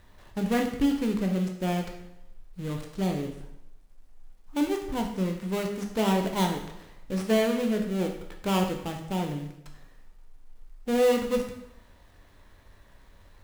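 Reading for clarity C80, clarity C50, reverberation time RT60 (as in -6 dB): 9.0 dB, 6.5 dB, 0.80 s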